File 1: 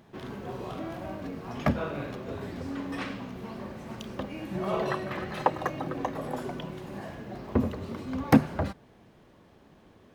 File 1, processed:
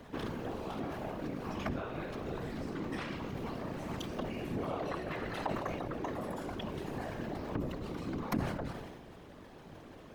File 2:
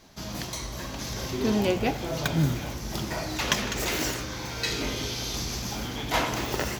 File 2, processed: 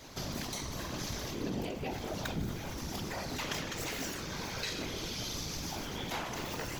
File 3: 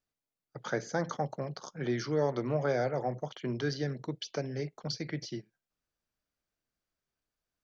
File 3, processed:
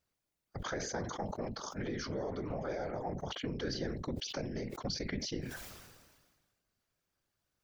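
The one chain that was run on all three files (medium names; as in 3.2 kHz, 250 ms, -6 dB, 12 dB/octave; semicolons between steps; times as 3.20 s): compression 6:1, threshold -41 dBFS; whisper effect; decay stretcher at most 38 dB/s; trim +4.5 dB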